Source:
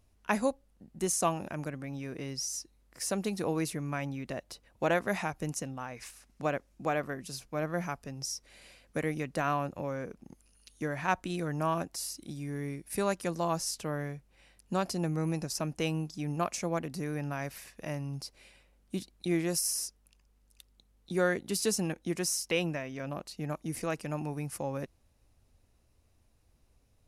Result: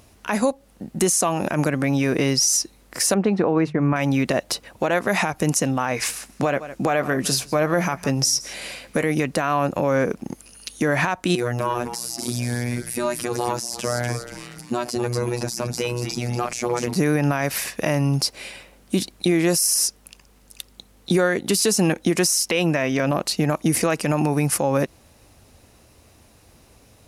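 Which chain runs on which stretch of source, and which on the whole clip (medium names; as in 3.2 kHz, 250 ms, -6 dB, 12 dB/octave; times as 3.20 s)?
3.14–3.96 s: low-pass 1.8 kHz + expander -39 dBFS + hum notches 50/100/150 Hz
5.92–9.04 s: doubling 15 ms -13 dB + delay 159 ms -22.5 dB
11.35–16.96 s: compression 4:1, threshold -36 dBFS + robot voice 121 Hz + frequency-shifting echo 239 ms, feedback 46%, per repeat -140 Hz, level -11 dB
whole clip: high-pass 170 Hz 6 dB/octave; compression 6:1, threshold -35 dBFS; loudness maximiser +30.5 dB; trim -9 dB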